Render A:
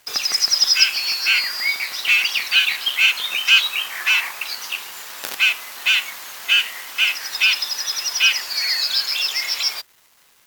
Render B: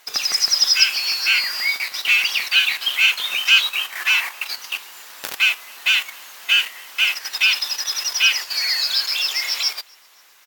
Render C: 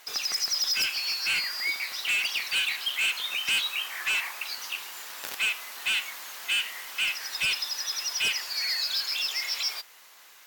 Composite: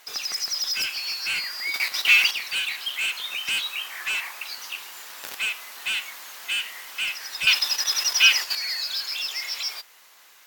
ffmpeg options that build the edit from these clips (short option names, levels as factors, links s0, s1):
-filter_complex "[1:a]asplit=2[s0][s1];[2:a]asplit=3[s2][s3][s4];[s2]atrim=end=1.742[s5];[s0]atrim=start=1.738:end=2.312[s6];[s3]atrim=start=2.308:end=7.472[s7];[s1]atrim=start=7.468:end=8.552[s8];[s4]atrim=start=8.548[s9];[s5][s6]acrossfade=d=0.004:c1=hsin:c2=hsin[s10];[s10][s7]acrossfade=d=0.004:c1=hsin:c2=hsin[s11];[s11][s8]acrossfade=d=0.004:c1=hsin:c2=hsin[s12];[s12][s9]acrossfade=d=0.004:c1=hsin:c2=hsin"